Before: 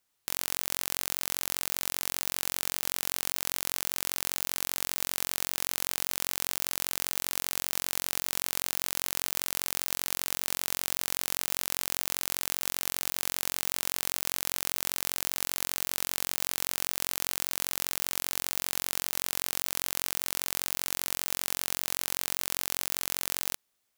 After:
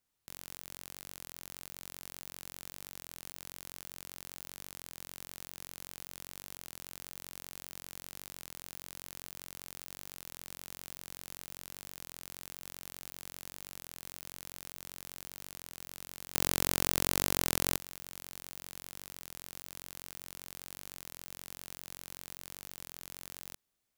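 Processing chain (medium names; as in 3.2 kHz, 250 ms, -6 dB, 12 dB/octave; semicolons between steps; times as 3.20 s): bass shelf 310 Hz +9.5 dB; 16.34–17.77 s: waveshaping leveller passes 2; level held to a coarse grid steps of 17 dB; warped record 33 1/3 rpm, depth 100 cents; trim +1.5 dB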